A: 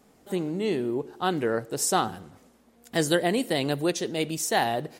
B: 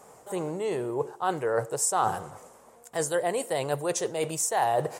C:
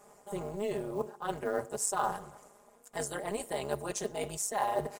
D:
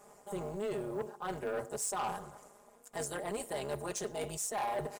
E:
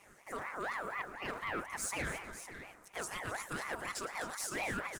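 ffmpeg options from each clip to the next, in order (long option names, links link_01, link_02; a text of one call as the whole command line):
ffmpeg -i in.wav -af "lowshelf=frequency=180:gain=-8.5,areverse,acompressor=threshold=-33dB:ratio=10,areverse,equalizer=frequency=125:width_type=o:width=1:gain=10,equalizer=frequency=250:width_type=o:width=1:gain=-10,equalizer=frequency=500:width_type=o:width=1:gain=8,equalizer=frequency=1000:width_type=o:width=1:gain=10,equalizer=frequency=4000:width_type=o:width=1:gain=-6,equalizer=frequency=8000:width_type=o:width=1:gain=11,volume=3.5dB" out.wav
ffmpeg -i in.wav -af "aecho=1:1:4.9:0.75,tremolo=f=210:d=0.824,acrusher=bits=7:mode=log:mix=0:aa=0.000001,volume=-4.5dB" out.wav
ffmpeg -i in.wav -af "asoftclip=type=tanh:threshold=-29dB" out.wav
ffmpeg -i in.wav -filter_complex "[0:a]asplit=2[link_01][link_02];[link_02]aecho=0:1:113|256|273|551:0.15|0.15|0.15|0.282[link_03];[link_01][link_03]amix=inputs=2:normalize=0,aeval=exprs='val(0)*sin(2*PI*1200*n/s+1200*0.35/4.1*sin(2*PI*4.1*n/s))':channel_layout=same" out.wav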